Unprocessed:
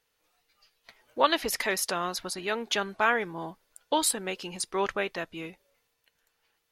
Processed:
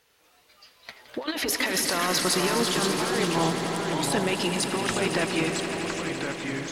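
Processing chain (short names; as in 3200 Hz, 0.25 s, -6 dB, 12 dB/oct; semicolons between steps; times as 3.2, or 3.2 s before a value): HPF 45 Hz; high shelf 11000 Hz -3.5 dB; negative-ratio compressor -34 dBFS, ratio -1; sine folder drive 6 dB, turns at -13.5 dBFS; echoes that change speed 86 ms, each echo -3 st, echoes 3, each echo -6 dB; swelling echo 84 ms, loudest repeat 5, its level -12 dB; gain -3.5 dB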